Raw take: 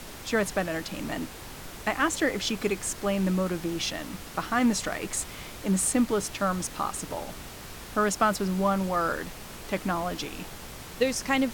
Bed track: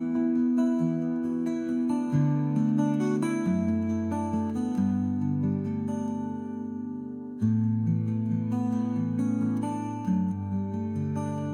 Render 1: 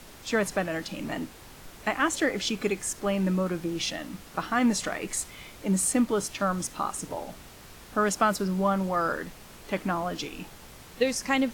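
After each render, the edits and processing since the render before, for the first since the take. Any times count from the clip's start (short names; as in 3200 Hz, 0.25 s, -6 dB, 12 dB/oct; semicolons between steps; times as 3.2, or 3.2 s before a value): noise print and reduce 6 dB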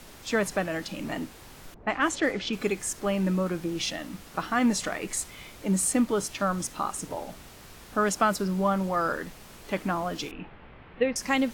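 1.74–2.53 low-pass opened by the level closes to 640 Hz, open at -20 dBFS; 10.31–11.16 inverse Chebyshev low-pass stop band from 6600 Hz, stop band 50 dB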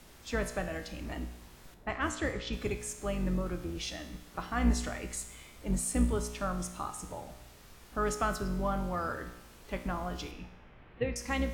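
octaver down 2 oct, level +1 dB; resonator 60 Hz, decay 0.9 s, harmonics all, mix 70%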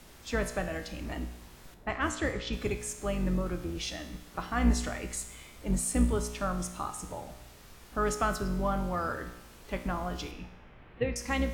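gain +2 dB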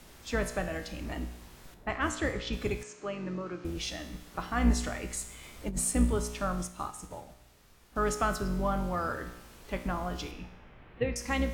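2.83–3.65 speaker cabinet 220–5600 Hz, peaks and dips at 230 Hz -6 dB, 530 Hz -4 dB, 780 Hz -5 dB, 1900 Hz -3 dB, 3500 Hz -7 dB, 5100 Hz -4 dB; 5.43–5.91 negative-ratio compressor -30 dBFS, ratio -0.5; 6.55–7.96 upward expander, over -48 dBFS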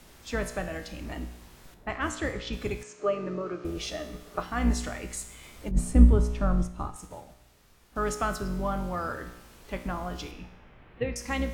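2.99–4.43 small resonant body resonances 430/610/1200 Hz, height 12 dB; 5.71–6.96 tilt -3 dB/oct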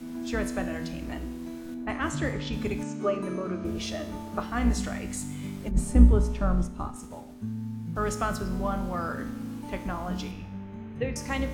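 add bed track -9.5 dB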